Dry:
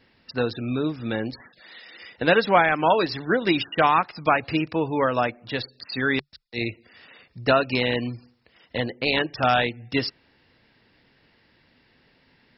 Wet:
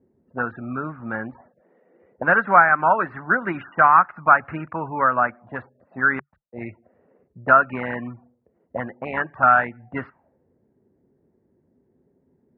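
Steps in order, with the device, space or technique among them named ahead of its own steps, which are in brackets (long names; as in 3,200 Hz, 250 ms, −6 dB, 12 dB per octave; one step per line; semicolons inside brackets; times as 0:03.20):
envelope filter bass rig (envelope-controlled low-pass 390–1,400 Hz up, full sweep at −23 dBFS; loudspeaker in its box 72–2,300 Hz, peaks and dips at 120 Hz −4 dB, 310 Hz −7 dB, 460 Hz −9 dB)
level −1 dB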